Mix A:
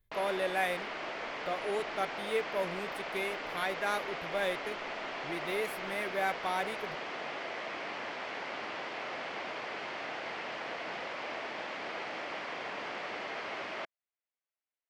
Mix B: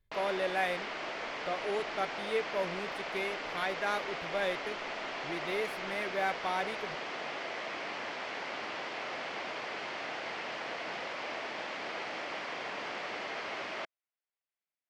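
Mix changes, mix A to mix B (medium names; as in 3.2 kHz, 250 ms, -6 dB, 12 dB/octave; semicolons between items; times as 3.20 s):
speech: add treble shelf 6.3 kHz -11.5 dB; master: add peaking EQ 6 kHz +3.5 dB 1.6 oct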